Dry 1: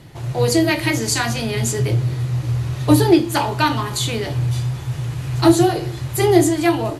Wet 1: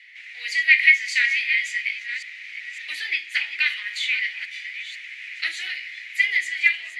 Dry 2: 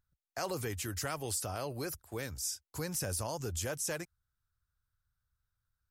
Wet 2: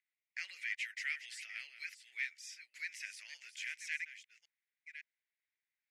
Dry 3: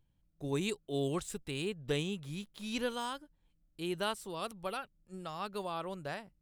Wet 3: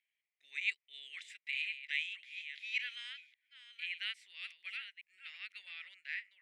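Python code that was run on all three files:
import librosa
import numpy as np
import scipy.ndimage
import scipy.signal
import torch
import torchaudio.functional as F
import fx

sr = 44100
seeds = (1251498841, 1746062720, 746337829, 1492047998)

y = fx.reverse_delay(x, sr, ms=557, wet_db=-11.0)
y = fx.ladder_bandpass(y, sr, hz=2200.0, resonance_pct=65)
y = fx.high_shelf_res(y, sr, hz=1500.0, db=13.0, q=3.0)
y = F.gain(torch.from_numpy(y), -5.5).numpy()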